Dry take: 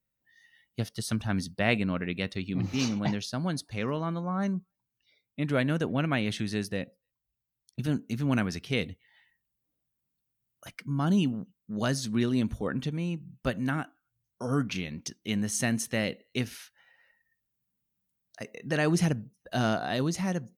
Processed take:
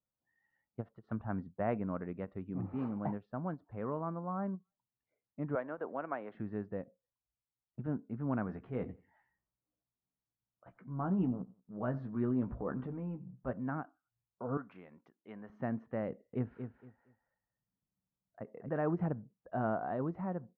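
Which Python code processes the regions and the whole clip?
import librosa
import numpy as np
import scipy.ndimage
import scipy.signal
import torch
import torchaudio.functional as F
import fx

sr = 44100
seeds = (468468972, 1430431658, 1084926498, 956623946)

y = fx.chain(x, sr, fx.highpass(hz=460.0, slope=12),
    fx.band_squash(depth_pct=40), at=(5.55, 6.35))
y = fx.chain(y, sr, fx.transient(attack_db=-4, sustain_db=6),
    fx.doubler(ms=16.0, db=-7.0),
    fx.echo_feedback(ms=90, feedback_pct=37, wet_db=-23.0), at=(8.47, 13.53))
y = fx.chain(y, sr, fx.highpass(hz=820.0, slope=6),
    fx.high_shelf(hz=6200.0, db=7.0), at=(14.57, 15.5))
y = fx.chain(y, sr, fx.low_shelf(hz=260.0, db=6.5),
    fx.echo_feedback(ms=232, feedback_pct=22, wet_db=-8), at=(16.1, 18.69))
y = scipy.signal.sosfilt(scipy.signal.butter(4, 1200.0, 'lowpass', fs=sr, output='sos'), y)
y = fx.low_shelf(y, sr, hz=410.0, db=-8.0)
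y = fx.end_taper(y, sr, db_per_s=430.0)
y = y * 10.0 ** (-2.0 / 20.0)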